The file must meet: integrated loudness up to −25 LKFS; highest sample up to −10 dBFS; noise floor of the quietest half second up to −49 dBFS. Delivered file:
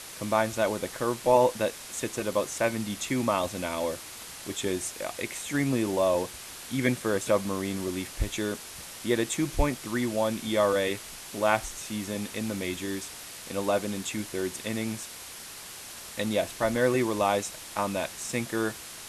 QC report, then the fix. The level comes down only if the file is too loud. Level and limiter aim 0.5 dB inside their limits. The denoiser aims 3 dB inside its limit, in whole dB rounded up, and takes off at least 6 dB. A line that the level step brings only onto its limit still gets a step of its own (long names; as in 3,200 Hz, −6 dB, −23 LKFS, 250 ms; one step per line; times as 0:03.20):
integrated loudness −29.0 LKFS: in spec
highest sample −7.5 dBFS: out of spec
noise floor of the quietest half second −43 dBFS: out of spec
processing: broadband denoise 9 dB, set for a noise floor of −43 dBFS
brickwall limiter −10.5 dBFS